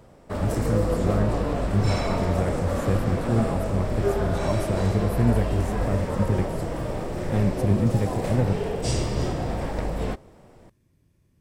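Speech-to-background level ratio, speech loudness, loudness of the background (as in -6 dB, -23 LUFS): 0.5 dB, -27.0 LUFS, -27.5 LUFS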